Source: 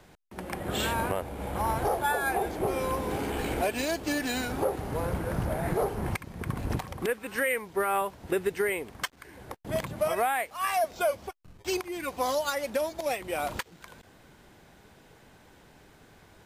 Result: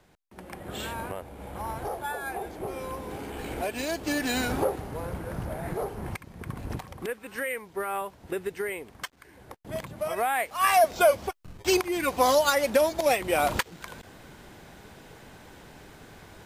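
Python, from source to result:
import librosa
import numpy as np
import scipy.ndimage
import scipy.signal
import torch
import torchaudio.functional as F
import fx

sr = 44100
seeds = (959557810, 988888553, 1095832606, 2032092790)

y = fx.gain(x, sr, db=fx.line((3.31, -6.0), (4.52, 4.5), (4.92, -4.0), (10.02, -4.0), (10.66, 7.0)))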